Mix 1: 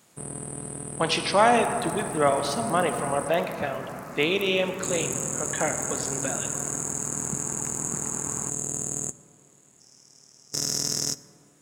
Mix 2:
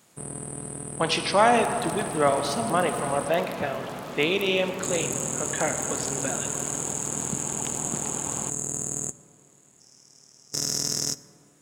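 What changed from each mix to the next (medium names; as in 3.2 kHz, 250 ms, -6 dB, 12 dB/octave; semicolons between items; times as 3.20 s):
second sound: remove static phaser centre 1.4 kHz, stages 4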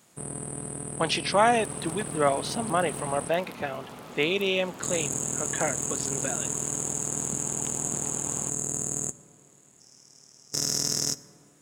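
speech: send off; second sound -5.5 dB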